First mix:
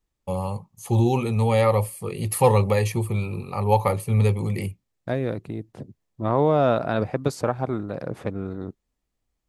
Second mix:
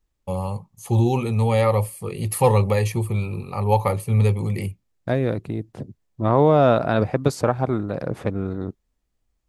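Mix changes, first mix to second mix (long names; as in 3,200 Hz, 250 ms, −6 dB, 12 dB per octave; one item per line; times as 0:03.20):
second voice +3.5 dB
master: add low-shelf EQ 75 Hz +5.5 dB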